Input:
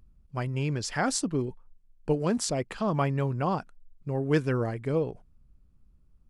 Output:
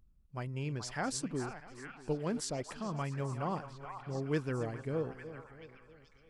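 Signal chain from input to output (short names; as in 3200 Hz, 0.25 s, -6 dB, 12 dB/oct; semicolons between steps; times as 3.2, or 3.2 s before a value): regenerating reverse delay 0.321 s, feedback 48%, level -13.5 dB; 2.74–3.2 bell 480 Hz -5.5 dB 2 oct; delay with a stepping band-pass 0.427 s, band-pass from 1100 Hz, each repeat 0.7 oct, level -5.5 dB; gain -8.5 dB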